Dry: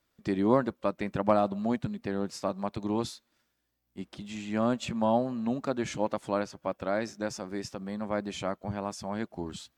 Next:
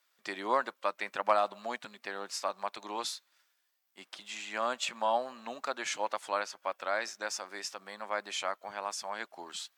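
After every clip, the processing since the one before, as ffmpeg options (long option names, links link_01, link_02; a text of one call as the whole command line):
ffmpeg -i in.wav -af "highpass=970,volume=4.5dB" out.wav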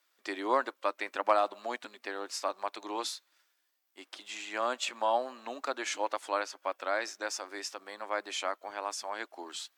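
ffmpeg -i in.wav -af "lowshelf=frequency=230:width_type=q:width=3:gain=-7.5" out.wav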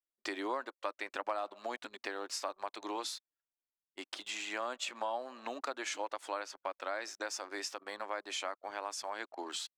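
ffmpeg -i in.wav -af "anlmdn=0.000631,acompressor=threshold=-43dB:ratio=3,volume=5dB" out.wav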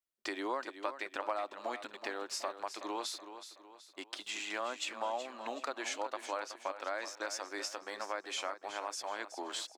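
ffmpeg -i in.wav -af "aecho=1:1:374|748|1122|1496:0.282|0.121|0.0521|0.0224" out.wav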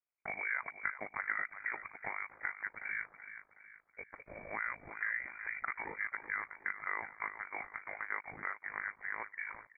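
ffmpeg -i in.wav -af "aeval=exprs='val(0)*sin(2*PI*26*n/s)':channel_layout=same,lowpass=frequency=2200:width_type=q:width=0.5098,lowpass=frequency=2200:width_type=q:width=0.6013,lowpass=frequency=2200:width_type=q:width=0.9,lowpass=frequency=2200:width_type=q:width=2.563,afreqshift=-2600,volume=2.5dB" out.wav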